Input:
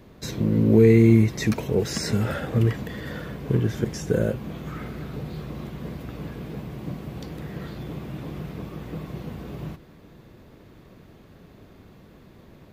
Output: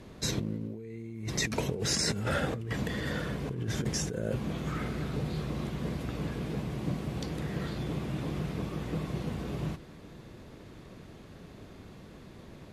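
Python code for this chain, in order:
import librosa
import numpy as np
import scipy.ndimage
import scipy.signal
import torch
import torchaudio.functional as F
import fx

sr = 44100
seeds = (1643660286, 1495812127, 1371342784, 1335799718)

y = scipy.signal.sosfilt(scipy.signal.butter(4, 11000.0, 'lowpass', fs=sr, output='sos'), x)
y = fx.high_shelf(y, sr, hz=4100.0, db=5.5)
y = fx.over_compress(y, sr, threshold_db=-28.0, ratio=-1.0)
y = y * librosa.db_to_amplitude(-4.5)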